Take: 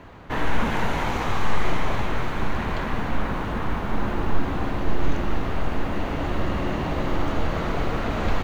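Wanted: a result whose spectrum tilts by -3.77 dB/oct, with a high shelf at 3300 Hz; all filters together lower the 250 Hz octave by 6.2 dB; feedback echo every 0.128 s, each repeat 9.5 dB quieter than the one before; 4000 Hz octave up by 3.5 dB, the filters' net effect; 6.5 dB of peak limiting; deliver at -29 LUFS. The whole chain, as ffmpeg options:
-af "equalizer=f=250:t=o:g=-8.5,highshelf=f=3.3k:g=-4,equalizer=f=4k:t=o:g=7.5,alimiter=limit=-14.5dB:level=0:latency=1,aecho=1:1:128|256|384|512:0.335|0.111|0.0365|0.012"

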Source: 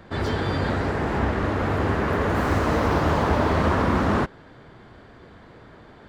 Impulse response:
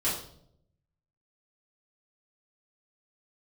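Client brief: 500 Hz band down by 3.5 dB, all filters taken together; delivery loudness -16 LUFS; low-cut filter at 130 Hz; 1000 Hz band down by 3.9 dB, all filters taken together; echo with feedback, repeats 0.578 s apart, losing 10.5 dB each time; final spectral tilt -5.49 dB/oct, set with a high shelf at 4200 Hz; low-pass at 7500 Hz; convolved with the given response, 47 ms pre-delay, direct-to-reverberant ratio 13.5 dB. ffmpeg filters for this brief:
-filter_complex "[0:a]highpass=130,lowpass=7.5k,equalizer=f=500:t=o:g=-3.5,equalizer=f=1k:t=o:g=-3.5,highshelf=f=4.2k:g=-5,aecho=1:1:578|1156|1734:0.299|0.0896|0.0269,asplit=2[a][b];[1:a]atrim=start_sample=2205,adelay=47[c];[b][c]afir=irnorm=-1:irlink=0,volume=-22dB[d];[a][d]amix=inputs=2:normalize=0,volume=10dB"

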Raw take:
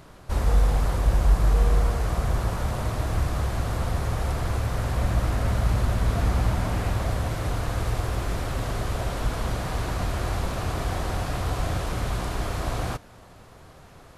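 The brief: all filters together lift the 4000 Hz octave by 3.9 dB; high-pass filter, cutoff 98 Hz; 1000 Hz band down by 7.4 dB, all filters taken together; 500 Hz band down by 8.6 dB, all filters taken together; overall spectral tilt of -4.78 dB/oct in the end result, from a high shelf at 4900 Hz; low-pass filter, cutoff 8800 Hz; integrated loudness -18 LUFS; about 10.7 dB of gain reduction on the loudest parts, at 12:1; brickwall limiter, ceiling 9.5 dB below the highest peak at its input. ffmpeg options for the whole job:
-af "highpass=98,lowpass=8.8k,equalizer=f=500:t=o:g=-9,equalizer=f=1k:t=o:g=-7,equalizer=f=4k:t=o:g=7.5,highshelf=f=4.9k:g=-4.5,acompressor=threshold=-35dB:ratio=12,volume=27.5dB,alimiter=limit=-9dB:level=0:latency=1"

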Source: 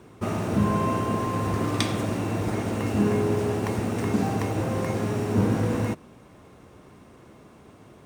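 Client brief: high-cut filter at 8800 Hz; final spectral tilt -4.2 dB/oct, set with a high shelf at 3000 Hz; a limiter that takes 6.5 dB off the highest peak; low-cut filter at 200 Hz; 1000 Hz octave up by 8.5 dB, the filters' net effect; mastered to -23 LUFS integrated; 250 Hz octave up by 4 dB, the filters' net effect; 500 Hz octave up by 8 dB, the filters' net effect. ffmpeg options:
-af "highpass=200,lowpass=8.8k,equalizer=f=250:t=o:g=5,equalizer=f=500:t=o:g=7,equalizer=f=1k:t=o:g=8.5,highshelf=f=3k:g=-7,alimiter=limit=-14dB:level=0:latency=1"

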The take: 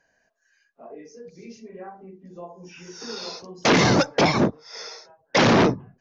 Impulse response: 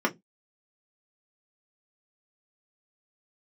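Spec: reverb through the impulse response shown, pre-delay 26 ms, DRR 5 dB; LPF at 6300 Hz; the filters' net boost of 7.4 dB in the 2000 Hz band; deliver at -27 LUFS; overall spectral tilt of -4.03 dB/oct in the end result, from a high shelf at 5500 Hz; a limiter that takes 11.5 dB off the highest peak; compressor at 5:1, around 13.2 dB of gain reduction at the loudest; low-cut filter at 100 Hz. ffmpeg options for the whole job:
-filter_complex "[0:a]highpass=100,lowpass=6.3k,equalizer=f=2k:t=o:g=8.5,highshelf=f=5.5k:g=3.5,acompressor=threshold=-26dB:ratio=5,alimiter=limit=-22.5dB:level=0:latency=1,asplit=2[a][b];[1:a]atrim=start_sample=2205,adelay=26[c];[b][c]afir=irnorm=-1:irlink=0,volume=-17dB[d];[a][d]amix=inputs=2:normalize=0,volume=6.5dB"

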